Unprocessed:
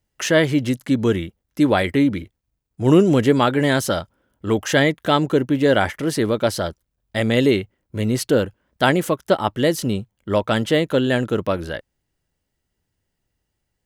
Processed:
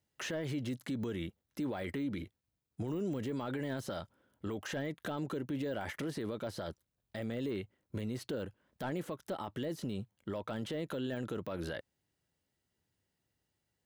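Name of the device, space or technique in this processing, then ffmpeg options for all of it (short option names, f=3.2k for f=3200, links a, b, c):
broadcast voice chain: -af "highpass=87,deesser=0.8,acompressor=threshold=-23dB:ratio=5,equalizer=f=3.9k:t=o:w=0.29:g=3,alimiter=limit=-23.5dB:level=0:latency=1:release=27,volume=-5.5dB"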